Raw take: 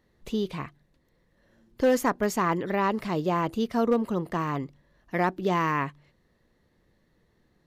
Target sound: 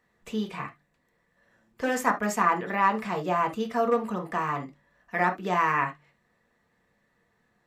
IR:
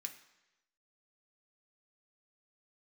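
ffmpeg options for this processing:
-filter_complex "[0:a]equalizer=frequency=890:width_type=o:width=2.5:gain=11[link_01];[1:a]atrim=start_sample=2205,atrim=end_sample=3528[link_02];[link_01][link_02]afir=irnorm=-1:irlink=0"

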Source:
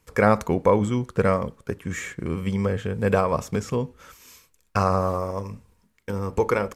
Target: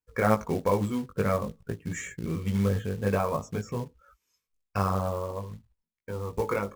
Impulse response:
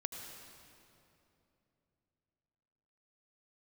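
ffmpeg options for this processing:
-filter_complex "[1:a]atrim=start_sample=2205,atrim=end_sample=3087,asetrate=79380,aresample=44100[link_01];[0:a][link_01]afir=irnorm=-1:irlink=0,flanger=delay=17.5:depth=2.9:speed=0.51,asettb=1/sr,asplit=3[link_02][link_03][link_04];[link_02]atrim=end=1.344[link_05];[link_03]atrim=start=1.34:end=2.87,asetpts=PTS-STARTPTS,afade=type=in:duration=0.004:curve=qsin,afade=type=out:start_time=1.526:duration=0.004:curve=qsin,bass=frequency=250:gain=4,treble=frequency=4000:gain=6[link_06];[link_04]atrim=start=2.866[link_07];[link_05][link_06]acrossfade=duration=0.004:curve1=hsin:curve2=qsin[link_08];[link_08][link_07]acrossfade=duration=0.004:curve1=qsin:curve2=hsin,afftdn=noise_reduction=23:noise_floor=-51,acrossover=split=6200[link_09][link_10];[link_09]acrusher=bits=5:mode=log:mix=0:aa=0.000001[link_11];[link_11][link_10]amix=inputs=2:normalize=0,volume=4.5dB"

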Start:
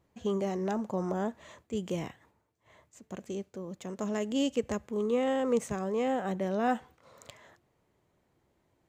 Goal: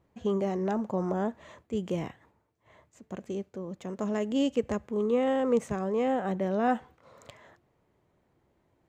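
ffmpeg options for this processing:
ffmpeg -i in.wav -af "highshelf=frequency=3600:gain=-9,volume=2.5dB" out.wav

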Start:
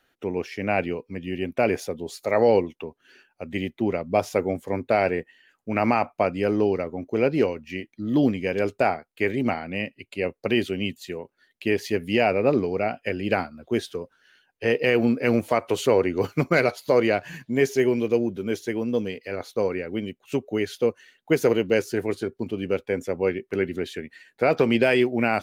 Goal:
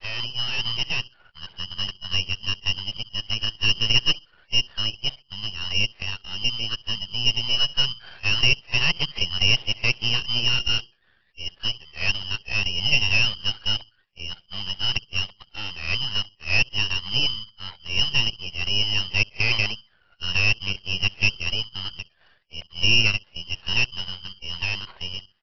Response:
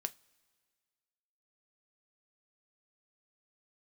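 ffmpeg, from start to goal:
-filter_complex "[0:a]areverse,acrossover=split=410|1200[link_01][link_02][link_03];[link_01]aecho=1:1:63|126|189:0.299|0.0657|0.0144[link_04];[link_02]dynaudnorm=framelen=540:gausssize=7:maxgain=11.5dB[link_05];[link_03]aeval=exprs='0.0447*(abs(mod(val(0)/0.0447+3,4)-2)-1)':channel_layout=same[link_06];[link_04][link_05][link_06]amix=inputs=3:normalize=0,lowpass=frequency=2800:width_type=q:width=0.5098,lowpass=frequency=2800:width_type=q:width=0.6013,lowpass=frequency=2800:width_type=q:width=0.9,lowpass=frequency=2800:width_type=q:width=2.563,afreqshift=-3300,aresample=11025,aeval=exprs='max(val(0),0)':channel_layout=same,aresample=44100,equalizer=frequency=270:width=4.8:gain=-10.5,volume=-2.5dB"

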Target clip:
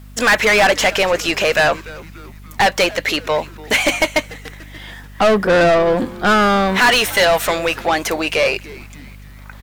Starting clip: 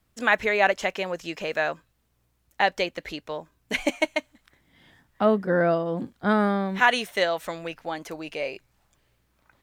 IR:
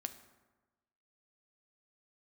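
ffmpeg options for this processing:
-filter_complex "[0:a]highshelf=frequency=10000:gain=11.5,asplit=2[link_01][link_02];[link_02]highpass=frequency=720:poles=1,volume=28dB,asoftclip=type=tanh:threshold=-5dB[link_03];[link_01][link_03]amix=inputs=2:normalize=0,lowpass=frequency=5700:poles=1,volume=-6dB,aeval=exprs='val(0)+0.0141*(sin(2*PI*50*n/s)+sin(2*PI*2*50*n/s)/2+sin(2*PI*3*50*n/s)/3+sin(2*PI*4*50*n/s)/4+sin(2*PI*5*50*n/s)/5)':channel_layout=same,asplit=2[link_04][link_05];[link_05]asplit=4[link_06][link_07][link_08][link_09];[link_06]adelay=291,afreqshift=-150,volume=-20dB[link_10];[link_07]adelay=582,afreqshift=-300,volume=-25.7dB[link_11];[link_08]adelay=873,afreqshift=-450,volume=-31.4dB[link_12];[link_09]adelay=1164,afreqshift=-600,volume=-37dB[link_13];[link_10][link_11][link_12][link_13]amix=inputs=4:normalize=0[link_14];[link_04][link_14]amix=inputs=2:normalize=0"

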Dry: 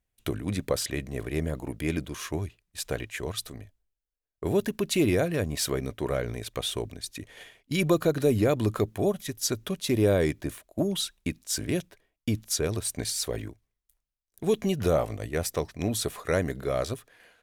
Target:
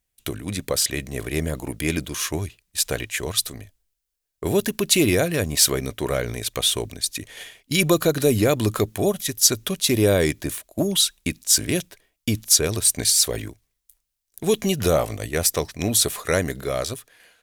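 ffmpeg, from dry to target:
ffmpeg -i in.wav -af "dynaudnorm=framelen=140:gausssize=13:maxgain=4dB,highshelf=frequency=2700:gain=10.5" out.wav

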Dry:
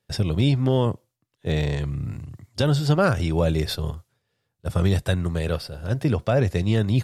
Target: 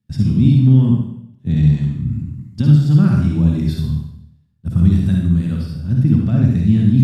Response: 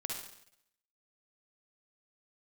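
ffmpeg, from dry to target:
-filter_complex "[0:a]lowshelf=frequency=330:width_type=q:width=3:gain=13.5[link_01];[1:a]atrim=start_sample=2205[link_02];[link_01][link_02]afir=irnorm=-1:irlink=0,volume=-7dB"

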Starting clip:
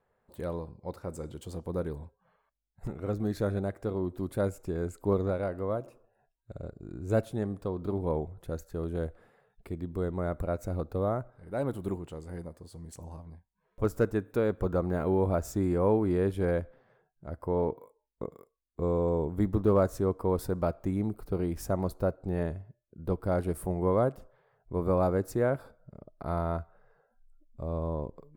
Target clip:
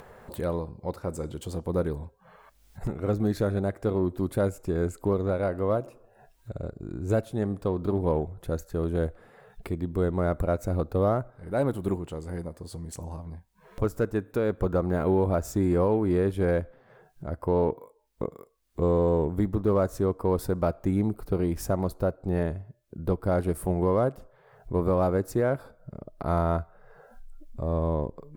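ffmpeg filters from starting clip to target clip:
ffmpeg -i in.wav -af "acompressor=mode=upward:threshold=-38dB:ratio=2.5,alimiter=limit=-21dB:level=0:latency=1:release=415,aeval=exprs='0.0891*(cos(1*acos(clip(val(0)/0.0891,-1,1)))-cos(1*PI/2))+0.001*(cos(7*acos(clip(val(0)/0.0891,-1,1)))-cos(7*PI/2))':channel_layout=same,volume=6dB" out.wav

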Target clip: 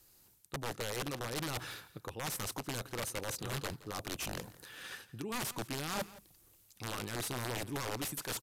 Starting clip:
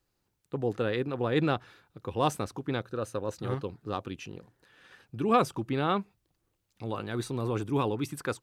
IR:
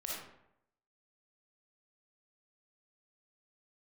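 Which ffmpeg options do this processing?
-af "aemphasis=mode=production:type=75fm,areverse,acompressor=threshold=-41dB:ratio=16,areverse,aeval=exprs='(mod(84.1*val(0)+1,2)-1)/84.1':channel_layout=same,aecho=1:1:169:0.112,aresample=32000,aresample=44100,volume=7.5dB"

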